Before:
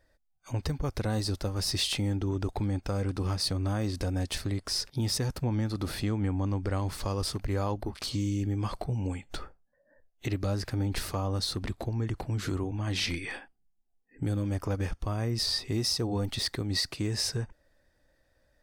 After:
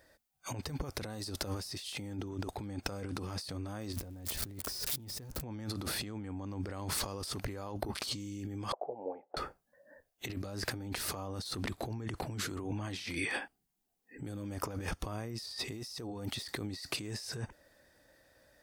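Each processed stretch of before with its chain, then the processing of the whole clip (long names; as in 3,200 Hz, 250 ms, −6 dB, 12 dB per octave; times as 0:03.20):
0:03.93–0:05.41: spike at every zero crossing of −27.5 dBFS + spectral tilt −2.5 dB per octave
0:08.72–0:09.37: flat-topped band-pass 610 Hz, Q 1.6 + high-frequency loss of the air 260 metres
whole clip: high-pass filter 170 Hz 6 dB per octave; high-shelf EQ 8,900 Hz +6.5 dB; compressor whose output falls as the input rises −40 dBFS, ratio −1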